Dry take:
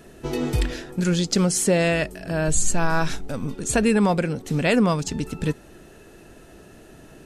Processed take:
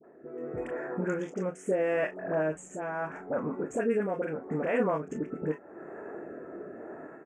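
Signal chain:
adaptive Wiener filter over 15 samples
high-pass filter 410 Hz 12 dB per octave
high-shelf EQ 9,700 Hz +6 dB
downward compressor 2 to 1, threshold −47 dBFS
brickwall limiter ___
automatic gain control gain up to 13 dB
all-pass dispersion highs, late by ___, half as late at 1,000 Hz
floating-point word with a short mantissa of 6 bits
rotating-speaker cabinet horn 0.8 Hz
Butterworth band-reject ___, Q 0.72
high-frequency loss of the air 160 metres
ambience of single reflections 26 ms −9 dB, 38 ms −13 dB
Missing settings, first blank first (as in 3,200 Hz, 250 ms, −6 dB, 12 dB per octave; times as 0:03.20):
−27 dBFS, 49 ms, 4,200 Hz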